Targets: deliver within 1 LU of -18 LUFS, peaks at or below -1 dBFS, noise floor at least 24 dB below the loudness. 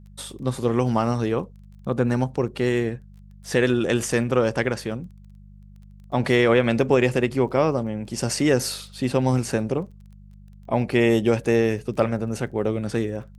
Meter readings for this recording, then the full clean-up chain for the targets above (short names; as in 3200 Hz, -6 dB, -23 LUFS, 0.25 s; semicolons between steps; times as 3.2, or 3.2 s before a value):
ticks 20/s; hum 50 Hz; harmonics up to 200 Hz; hum level -44 dBFS; loudness -23.0 LUFS; peak -6.5 dBFS; loudness target -18.0 LUFS
-> de-click; de-hum 50 Hz, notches 4; gain +5 dB